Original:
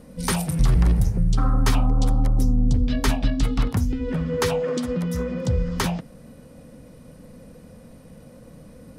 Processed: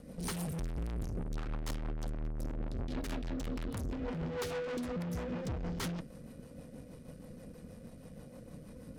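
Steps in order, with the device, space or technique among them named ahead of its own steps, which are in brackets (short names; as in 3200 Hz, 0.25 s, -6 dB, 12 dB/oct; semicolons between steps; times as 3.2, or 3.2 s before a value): overdriven rotary cabinet (tube stage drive 34 dB, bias 0.65; rotary speaker horn 6.3 Hz)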